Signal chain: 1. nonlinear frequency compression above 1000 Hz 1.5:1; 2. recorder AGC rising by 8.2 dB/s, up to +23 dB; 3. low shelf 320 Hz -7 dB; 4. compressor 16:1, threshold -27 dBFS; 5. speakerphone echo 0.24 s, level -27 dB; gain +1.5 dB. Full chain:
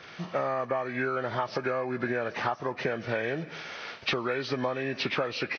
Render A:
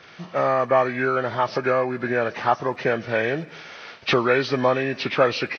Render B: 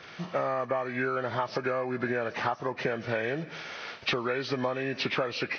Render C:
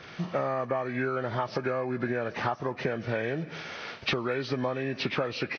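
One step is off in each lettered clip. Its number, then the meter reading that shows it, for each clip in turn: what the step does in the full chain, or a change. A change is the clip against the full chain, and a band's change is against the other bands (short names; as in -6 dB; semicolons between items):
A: 4, mean gain reduction 6.0 dB; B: 5, echo-to-direct -29.5 dB to none; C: 3, 125 Hz band +4.5 dB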